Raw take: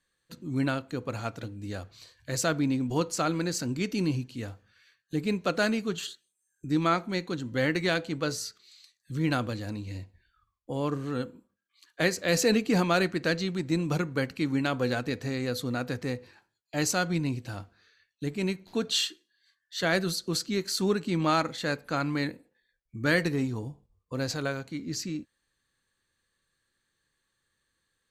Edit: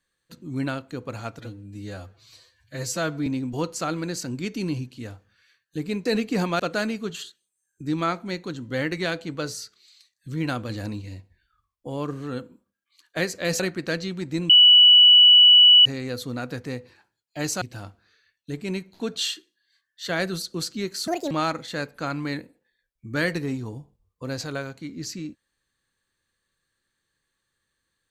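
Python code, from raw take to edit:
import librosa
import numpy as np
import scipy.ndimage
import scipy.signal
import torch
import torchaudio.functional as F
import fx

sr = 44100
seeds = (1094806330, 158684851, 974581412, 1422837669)

y = fx.edit(x, sr, fx.stretch_span(start_s=1.39, length_s=1.25, factor=1.5),
    fx.clip_gain(start_s=9.53, length_s=0.32, db=4.0),
    fx.move(start_s=12.43, length_s=0.54, to_s=5.43),
    fx.bleep(start_s=13.87, length_s=1.36, hz=2950.0, db=-9.0),
    fx.cut(start_s=16.99, length_s=0.36),
    fx.speed_span(start_s=20.81, length_s=0.4, speed=1.71), tone=tone)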